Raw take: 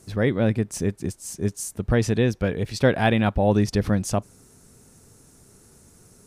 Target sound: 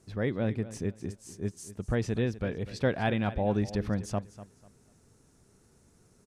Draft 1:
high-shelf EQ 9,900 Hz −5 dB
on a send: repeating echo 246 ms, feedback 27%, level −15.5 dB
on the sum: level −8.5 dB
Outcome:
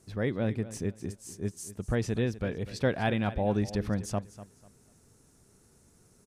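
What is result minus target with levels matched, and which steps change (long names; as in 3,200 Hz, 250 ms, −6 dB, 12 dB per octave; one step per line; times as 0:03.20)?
8,000 Hz band +3.0 dB
change: high-shelf EQ 9,900 Hz −15 dB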